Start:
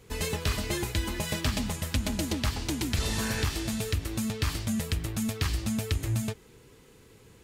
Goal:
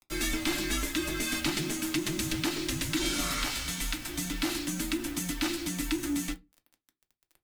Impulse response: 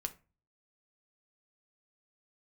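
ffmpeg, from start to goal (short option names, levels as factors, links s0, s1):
-filter_complex "[0:a]asettb=1/sr,asplit=3[s0][s1][s2];[s0]atrim=end=3.254[s3];[s1]atrim=start=3.25:end=4.08,asetpts=PTS-STARTPTS,afade=t=in:d=0.004:c=qsin,afade=t=out:st=0.826:d=0.004:c=qsin,highpass=180[s4];[s2]atrim=start=4.076[s5];[s3][s4]acrossfade=d=0.004:c1=hsin:c2=qsin[s6];[s6][s5]acrossfade=d=0.004:c1=qsin:c2=hsin,acrossover=split=410|1500[s7][s8][s9];[s9]acontrast=88[s10];[s7][s8][s10]amix=inputs=3:normalize=0,acrusher=bits=6:mix=0:aa=0.000001,afreqshift=-400,asplit=2[s11][s12];[s12]asoftclip=type=hard:threshold=0.0447,volume=0.631[s13];[s11][s13]amix=inputs=2:normalize=0[s14];[1:a]atrim=start_sample=2205,asetrate=79380,aresample=44100[s15];[s14][s15]afir=irnorm=-1:irlink=0,volume=0.841"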